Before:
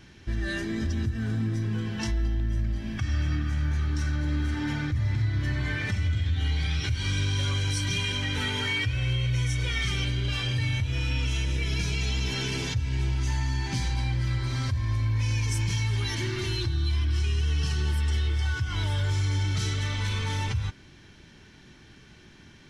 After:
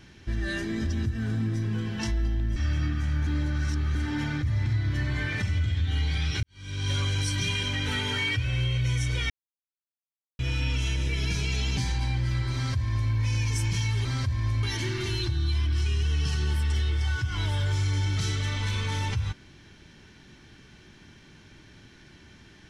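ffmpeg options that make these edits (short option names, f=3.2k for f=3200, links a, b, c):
-filter_complex "[0:a]asplit=10[a][b][c][d][e][f][g][h][i][j];[a]atrim=end=2.562[k];[b]atrim=start=3.048:end=3.762[l];[c]atrim=start=3.758:end=4.442,asetpts=PTS-STARTPTS,areverse[m];[d]atrim=start=4.438:end=6.92,asetpts=PTS-STARTPTS,afade=t=out:st=2.478:d=0.004:c=hsin[n];[e]atrim=start=6.92:end=9.79,asetpts=PTS-STARTPTS,afade=t=in:d=0.47:c=qua,afade=t=out:st=2.866:d=0.004:c=hsin[o];[f]atrim=start=9.79:end=10.88,asetpts=PTS-STARTPTS,volume=0[p];[g]atrim=start=10.88:end=12.262,asetpts=PTS-STARTPTS,afade=t=in:d=0.004:c=hsin[q];[h]atrim=start=13.728:end=16.012[r];[i]atrim=start=14.498:end=15.082[s];[j]atrim=start=16.008[t];[k][l]acrossfade=d=0.004:c1=hsin:c2=hsin[u];[u][m]acrossfade=d=0.004:c1=hsin:c2=hsin[v];[n][o][p][q]concat=n=4:v=0:a=1[w];[v][w]acrossfade=d=0.004:c1=hsin:c2=hsin[x];[x][r]acrossfade=d=0.004:c1=hsin:c2=hsin[y];[y][s]acrossfade=d=0.004:c1=hsin:c2=hsin[z];[z][t]acrossfade=d=0.004:c1=hsin:c2=hsin"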